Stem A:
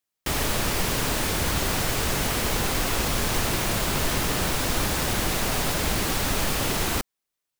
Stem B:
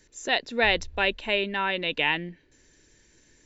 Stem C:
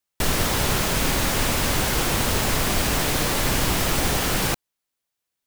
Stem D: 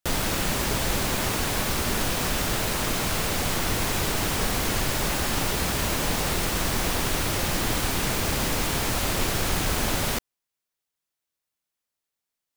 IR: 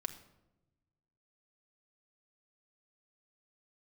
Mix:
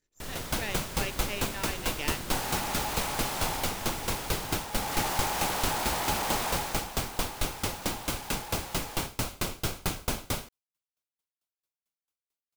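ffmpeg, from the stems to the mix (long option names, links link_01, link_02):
-filter_complex "[0:a]asoftclip=type=hard:threshold=-23dB,aeval=exprs='val(0)*sin(2*PI*840*n/s)':channel_layout=same,adelay=2050,volume=5dB,afade=type=out:start_time=3.54:duration=0.21:silence=0.473151,afade=type=in:start_time=4.71:duration=0.29:silence=0.334965,afade=type=out:start_time=6.46:duration=0.41:silence=0.266073[link_01];[1:a]aeval=exprs='if(lt(val(0),0),0.251*val(0),val(0))':channel_layout=same,dynaudnorm=framelen=140:gausssize=9:maxgain=11.5dB,volume=-17dB[link_02];[2:a]volume=-17.5dB[link_03];[3:a]bandreject=frequency=1800:width=6.8,aeval=exprs='val(0)*pow(10,-33*if(lt(mod(4.5*n/s,1),2*abs(4.5)/1000),1-mod(4.5*n/s,1)/(2*abs(4.5)/1000),(mod(4.5*n/s,1)-2*abs(4.5)/1000)/(1-2*abs(4.5)/1000))/20)':channel_layout=same,adelay=300,volume=1dB[link_04];[link_01][link_02][link_03][link_04]amix=inputs=4:normalize=0"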